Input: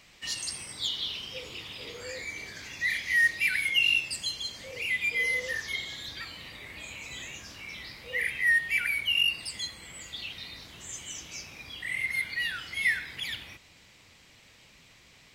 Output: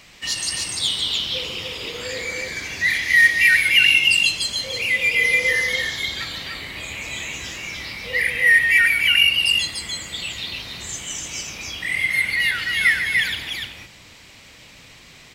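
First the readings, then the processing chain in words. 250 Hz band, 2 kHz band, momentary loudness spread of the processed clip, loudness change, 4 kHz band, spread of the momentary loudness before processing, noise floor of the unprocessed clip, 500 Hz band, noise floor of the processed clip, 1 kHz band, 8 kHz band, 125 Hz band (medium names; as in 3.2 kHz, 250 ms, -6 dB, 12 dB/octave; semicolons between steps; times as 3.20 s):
+11.0 dB, +11.0 dB, 17 LU, +11.0 dB, +11.0 dB, 17 LU, -57 dBFS, +11.0 dB, -46 dBFS, +11.0 dB, +11.0 dB, +11.0 dB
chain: on a send: multi-tap echo 144/295 ms -9/-3 dB; on the sum: trim +9 dB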